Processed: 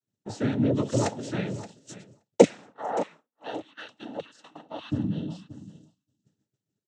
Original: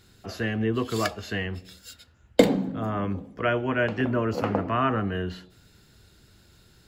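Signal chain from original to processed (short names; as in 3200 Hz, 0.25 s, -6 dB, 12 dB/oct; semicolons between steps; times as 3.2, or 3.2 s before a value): band shelf 2200 Hz -10.5 dB 3 oct; 2.43–4.91 LFO high-pass saw down 1.7 Hz 550–2100 Hz; noise vocoder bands 12; 3.26–6.24 spectral gain 340–2600 Hz -14 dB; dynamic EQ 6300 Hz, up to +4 dB, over -54 dBFS, Q 0.8; feedback echo 0.574 s, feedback 22%, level -15 dB; expander -42 dBFS; gain +2.5 dB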